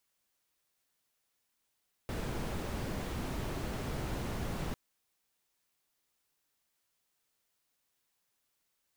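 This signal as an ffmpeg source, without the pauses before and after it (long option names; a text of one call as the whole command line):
ffmpeg -f lavfi -i "anoisesrc=color=brown:amplitude=0.07:duration=2.65:sample_rate=44100:seed=1" out.wav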